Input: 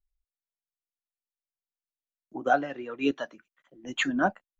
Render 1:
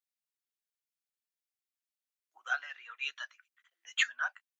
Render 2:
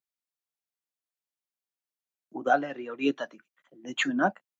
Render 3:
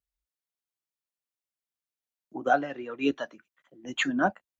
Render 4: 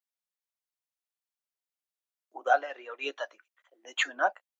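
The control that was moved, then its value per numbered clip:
high-pass filter, corner frequency: 1,400, 130, 48, 520 Hertz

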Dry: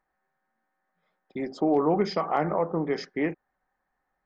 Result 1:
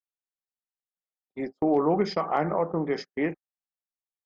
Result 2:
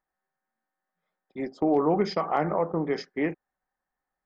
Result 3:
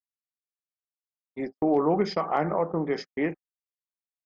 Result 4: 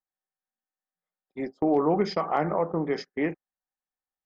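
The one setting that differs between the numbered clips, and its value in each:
noise gate, range: −34, −8, −56, −22 decibels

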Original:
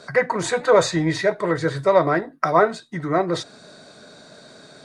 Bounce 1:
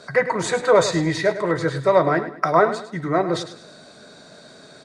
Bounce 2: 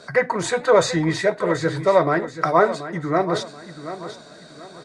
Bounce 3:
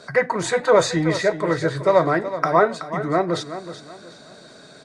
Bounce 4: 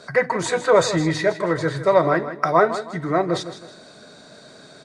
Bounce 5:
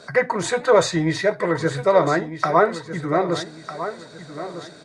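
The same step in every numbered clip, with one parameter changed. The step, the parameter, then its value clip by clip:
repeating echo, delay time: 104, 732, 375, 159, 1,252 milliseconds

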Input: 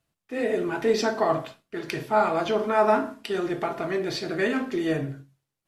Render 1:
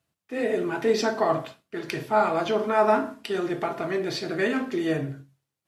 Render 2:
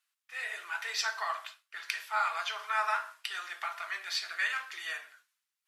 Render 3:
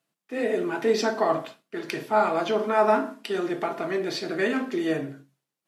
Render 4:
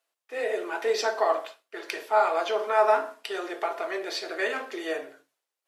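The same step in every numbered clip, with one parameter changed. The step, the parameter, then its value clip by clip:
high-pass filter, corner frequency: 62, 1,200, 170, 450 Hertz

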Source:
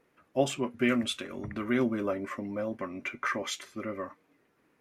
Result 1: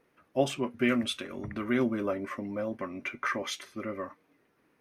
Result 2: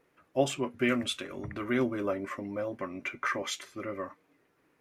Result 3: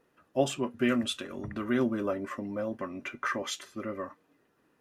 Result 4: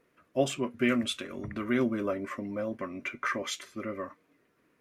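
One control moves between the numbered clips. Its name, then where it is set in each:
notch filter, centre frequency: 7,300, 220, 2,200, 830 Hertz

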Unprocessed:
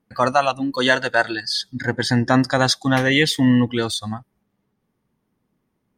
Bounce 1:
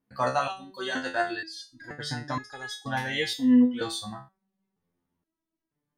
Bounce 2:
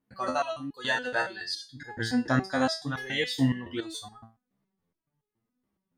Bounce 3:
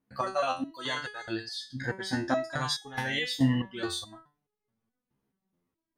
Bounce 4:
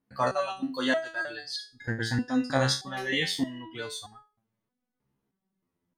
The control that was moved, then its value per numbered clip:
step-sequenced resonator, speed: 2.1, 7.1, 4.7, 3.2 Hertz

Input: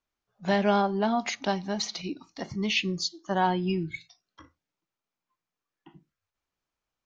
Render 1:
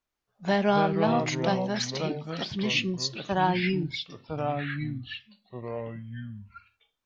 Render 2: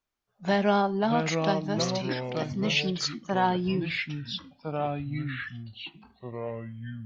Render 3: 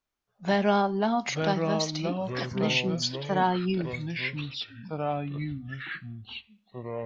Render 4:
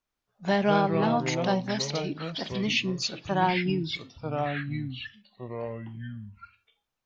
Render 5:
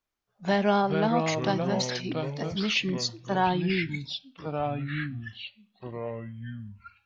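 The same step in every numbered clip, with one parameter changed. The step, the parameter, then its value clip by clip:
delay with pitch and tempo change per echo, delay time: 151, 501, 759, 86, 300 milliseconds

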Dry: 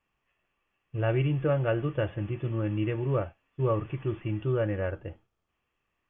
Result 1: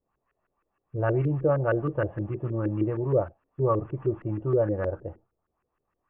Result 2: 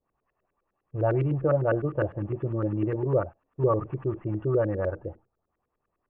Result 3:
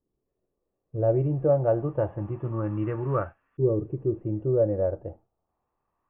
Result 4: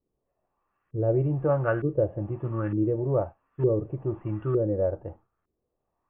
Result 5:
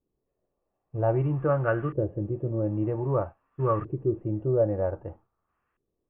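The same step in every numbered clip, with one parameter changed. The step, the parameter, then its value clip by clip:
auto-filter low-pass, speed: 6.4, 9.9, 0.28, 1.1, 0.52 Hertz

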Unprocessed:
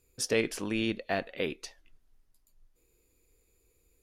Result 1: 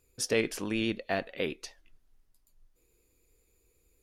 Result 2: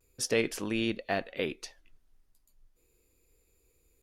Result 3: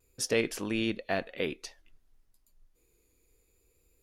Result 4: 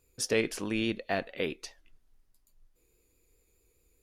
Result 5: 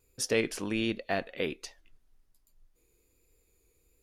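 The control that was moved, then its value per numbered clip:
pitch vibrato, speed: 9.4, 0.38, 0.58, 4.8, 1.3 Hertz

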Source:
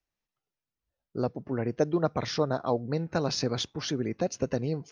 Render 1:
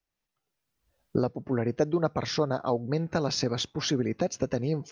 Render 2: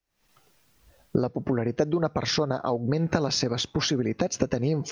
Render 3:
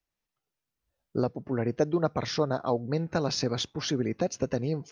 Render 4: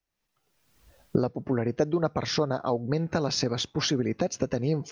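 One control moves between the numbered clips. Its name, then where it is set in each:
camcorder AGC, rising by: 14, 88, 5.1, 36 dB per second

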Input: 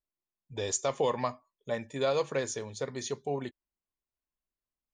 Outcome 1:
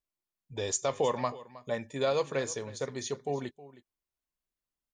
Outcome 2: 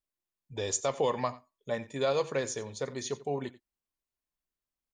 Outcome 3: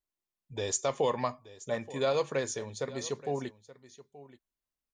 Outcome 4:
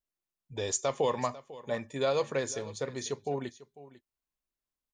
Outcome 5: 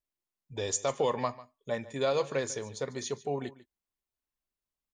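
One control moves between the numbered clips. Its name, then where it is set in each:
single-tap delay, delay time: 316, 89, 877, 497, 146 milliseconds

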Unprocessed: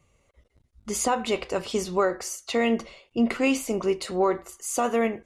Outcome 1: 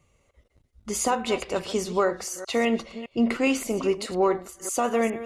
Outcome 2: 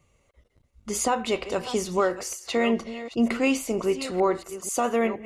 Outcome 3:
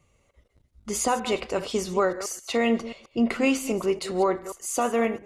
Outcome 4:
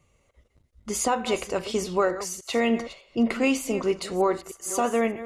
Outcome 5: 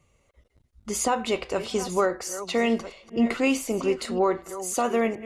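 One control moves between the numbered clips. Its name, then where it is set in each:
delay that plays each chunk backwards, delay time: 204, 469, 133, 301, 736 milliseconds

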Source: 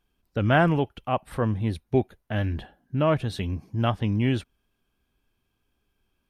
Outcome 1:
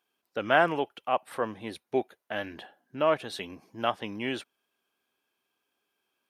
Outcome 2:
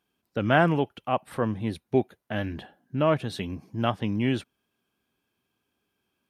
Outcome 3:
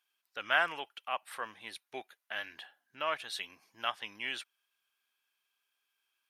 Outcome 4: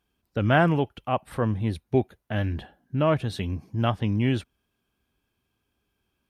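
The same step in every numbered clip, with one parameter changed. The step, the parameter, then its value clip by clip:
high-pass filter, corner frequency: 430, 150, 1,400, 55 Hertz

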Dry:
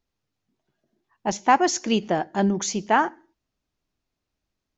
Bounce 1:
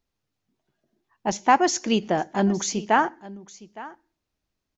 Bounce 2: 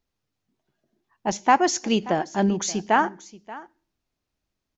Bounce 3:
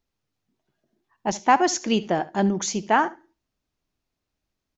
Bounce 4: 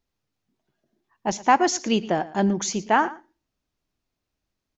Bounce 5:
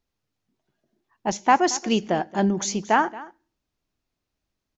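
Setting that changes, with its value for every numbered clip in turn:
single-tap delay, delay time: 863, 581, 72, 115, 226 milliseconds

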